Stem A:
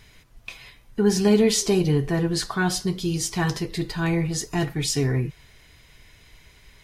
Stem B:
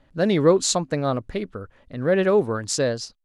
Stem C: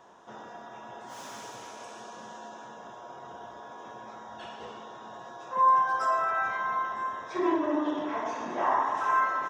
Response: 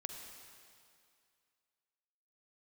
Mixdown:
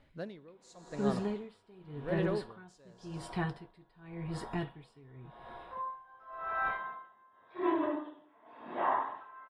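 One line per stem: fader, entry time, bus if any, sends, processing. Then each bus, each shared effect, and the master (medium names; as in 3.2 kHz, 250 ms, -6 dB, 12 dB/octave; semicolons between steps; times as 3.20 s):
-17.5 dB, 0.00 s, no send, boxcar filter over 7 samples; level rider gain up to 12.5 dB
-8.0 dB, 0.00 s, send -11 dB, auto duck -10 dB, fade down 0.50 s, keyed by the first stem
0.0 dB, 0.20 s, no send, steep low-pass 3.9 kHz 48 dB/octave; random flutter of the level, depth 55%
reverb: on, RT60 2.3 s, pre-delay 41 ms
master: logarithmic tremolo 0.9 Hz, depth 27 dB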